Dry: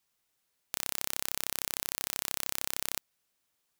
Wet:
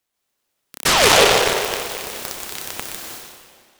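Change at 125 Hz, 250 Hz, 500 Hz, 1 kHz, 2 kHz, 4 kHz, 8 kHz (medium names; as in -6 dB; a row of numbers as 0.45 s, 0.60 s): +20.0 dB, +21.0 dB, +30.0 dB, +25.0 dB, +21.5 dB, +19.5 dB, +13.0 dB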